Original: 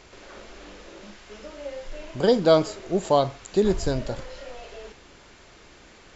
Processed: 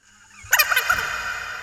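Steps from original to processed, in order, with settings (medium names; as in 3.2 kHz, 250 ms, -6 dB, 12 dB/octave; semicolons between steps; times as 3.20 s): local Wiener filter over 15 samples; Doppler pass-by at 2.35 s, 41 m/s, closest 29 m; high-order bell 2.1 kHz +16 dB; small resonant body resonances 400/750/1800/3100 Hz, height 16 dB, ringing for 55 ms; wide varispeed 3.79×; on a send at -4 dB: reverberation RT60 5.7 s, pre-delay 68 ms; on the sum: tape noise reduction on one side only decoder only; trim -3.5 dB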